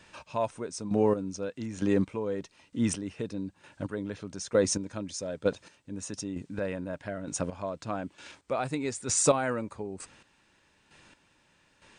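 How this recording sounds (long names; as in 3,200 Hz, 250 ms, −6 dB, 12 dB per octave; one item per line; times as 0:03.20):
a quantiser's noise floor 12 bits, dither triangular
chopped level 1.1 Hz, depth 65%, duty 25%
MP2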